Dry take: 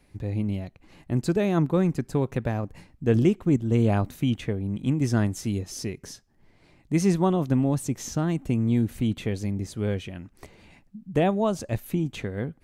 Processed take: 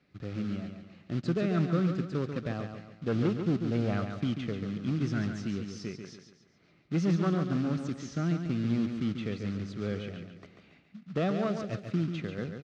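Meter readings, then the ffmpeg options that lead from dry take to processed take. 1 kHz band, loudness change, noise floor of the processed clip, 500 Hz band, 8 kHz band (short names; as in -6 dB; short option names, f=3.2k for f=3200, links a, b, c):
-7.5 dB, -6.0 dB, -64 dBFS, -7.0 dB, -14.0 dB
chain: -af "asoftclip=type=hard:threshold=-16dB,acrusher=bits=4:mode=log:mix=0:aa=0.000001,highpass=110,equalizer=f=170:t=q:w=4:g=5,equalizer=f=920:t=q:w=4:g=-10,equalizer=f=1.3k:t=q:w=4:g=8,lowpass=f=5.2k:w=0.5412,lowpass=f=5.2k:w=1.3066,aecho=1:1:140|280|420|560|700:0.447|0.183|0.0751|0.0308|0.0126,volume=-6.5dB"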